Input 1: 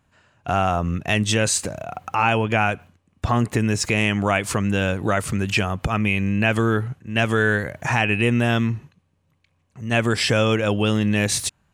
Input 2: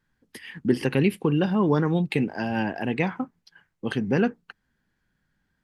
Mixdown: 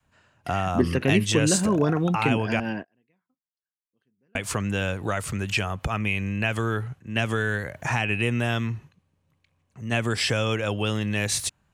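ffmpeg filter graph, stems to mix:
ffmpeg -i stem1.wav -i stem2.wav -filter_complex "[0:a]adynamicequalizer=threshold=0.02:dfrequency=240:dqfactor=0.83:tfrequency=240:tqfactor=0.83:attack=5:release=100:ratio=0.375:range=3:mode=cutabove:tftype=bell,acrossover=split=240|3000[link_01][link_02][link_03];[link_02]acompressor=threshold=-20dB:ratio=10[link_04];[link_01][link_04][link_03]amix=inputs=3:normalize=0,volume=-3dB,asplit=3[link_05][link_06][link_07];[link_05]atrim=end=2.6,asetpts=PTS-STARTPTS,afade=type=out:start_time=2.596:duration=0.004:curve=hsin[link_08];[link_06]atrim=start=2.6:end=4.35,asetpts=PTS-STARTPTS,volume=0[link_09];[link_07]atrim=start=4.35,asetpts=PTS-STARTPTS,afade=type=in:duration=0.004:curve=hsin[link_10];[link_08][link_09][link_10]concat=n=3:v=0:a=1,asplit=2[link_11][link_12];[1:a]bandreject=frequency=830:width=5.3,adelay=100,volume=-0.5dB,afade=type=out:start_time=2.41:duration=0.74:silence=0.298538[link_13];[link_12]apad=whole_len=252731[link_14];[link_13][link_14]sidechaingate=range=-35dB:threshold=-55dB:ratio=16:detection=peak[link_15];[link_11][link_15]amix=inputs=2:normalize=0" out.wav

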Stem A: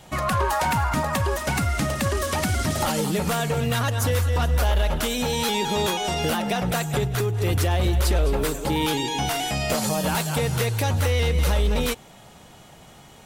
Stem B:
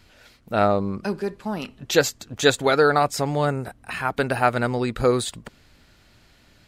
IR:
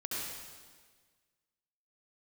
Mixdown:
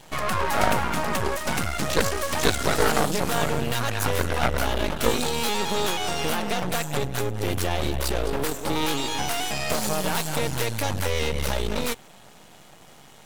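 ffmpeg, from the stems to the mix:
-filter_complex "[0:a]volume=3dB[link_01];[1:a]aeval=exprs='val(0)*sin(2*PI*27*n/s)':channel_layout=same,volume=2dB[link_02];[link_01][link_02]amix=inputs=2:normalize=0,lowshelf=frequency=89:gain=-11,aeval=exprs='max(val(0),0)':channel_layout=same"

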